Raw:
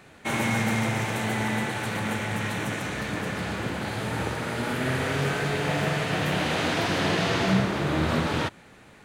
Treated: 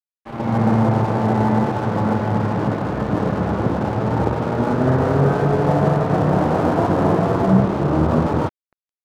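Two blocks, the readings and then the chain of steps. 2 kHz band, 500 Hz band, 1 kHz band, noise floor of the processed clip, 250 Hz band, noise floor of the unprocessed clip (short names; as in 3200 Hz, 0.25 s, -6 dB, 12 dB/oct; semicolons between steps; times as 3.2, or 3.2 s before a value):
-4.0 dB, +10.0 dB, +8.5 dB, under -85 dBFS, +10.0 dB, -51 dBFS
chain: inverse Chebyshev low-pass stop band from 6300 Hz, stop band 80 dB; AGC gain up to 15 dB; crossover distortion -30.5 dBFS; gain -1.5 dB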